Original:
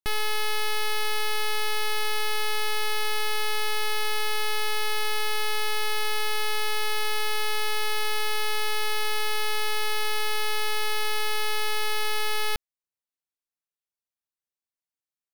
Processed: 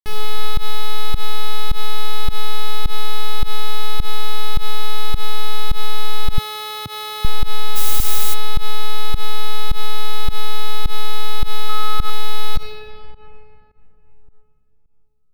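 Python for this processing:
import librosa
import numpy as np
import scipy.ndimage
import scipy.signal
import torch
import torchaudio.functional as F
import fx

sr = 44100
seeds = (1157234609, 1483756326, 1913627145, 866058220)

p1 = fx.low_shelf(x, sr, hz=420.0, db=5.5)
p2 = p1 + fx.room_early_taps(p1, sr, ms=(18, 50, 70), db=(-15.0, -16.5, -8.5), dry=0)
p3 = fx.room_shoebox(p2, sr, seeds[0], volume_m3=170.0, walls='hard', distance_m=0.35)
p4 = fx.volume_shaper(p3, sr, bpm=105, per_beat=1, depth_db=-22, release_ms=104.0, shape='fast start')
p5 = fx.highpass(p4, sr, hz=110.0, slope=24, at=(6.38, 7.25))
p6 = fx.dmg_noise_colour(p5, sr, seeds[1], colour='blue', level_db=-22.0, at=(7.75, 8.33), fade=0.02)
p7 = fx.peak_eq(p6, sr, hz=1300.0, db=9.0, octaves=0.38, at=(11.69, 12.1))
y = p7 * librosa.db_to_amplitude(-2.0)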